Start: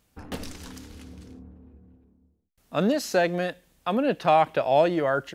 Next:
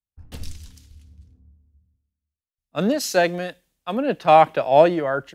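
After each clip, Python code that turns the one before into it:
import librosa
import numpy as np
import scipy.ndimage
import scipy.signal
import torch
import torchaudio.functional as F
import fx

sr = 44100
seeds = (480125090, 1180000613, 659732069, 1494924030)

y = fx.band_widen(x, sr, depth_pct=100)
y = F.gain(torch.from_numpy(y), 1.5).numpy()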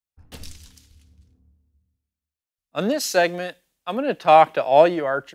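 y = fx.low_shelf(x, sr, hz=220.0, db=-8.5)
y = F.gain(torch.from_numpy(y), 1.0).numpy()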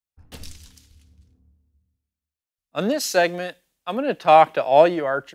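y = x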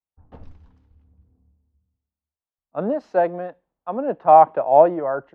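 y = fx.lowpass_res(x, sr, hz=920.0, q=1.7)
y = F.gain(torch.from_numpy(y), -2.5).numpy()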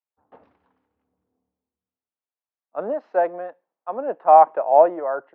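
y = fx.bandpass_edges(x, sr, low_hz=430.0, high_hz=2300.0)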